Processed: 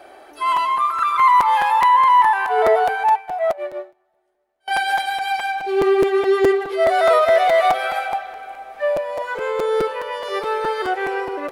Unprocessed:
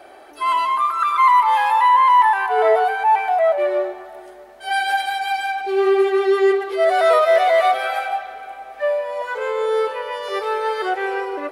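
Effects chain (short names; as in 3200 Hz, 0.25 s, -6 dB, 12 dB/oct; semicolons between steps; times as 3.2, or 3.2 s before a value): crackling interface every 0.21 s, samples 256, repeat, from 0.56; 3.09–4.68 upward expander 2.5:1, over -32 dBFS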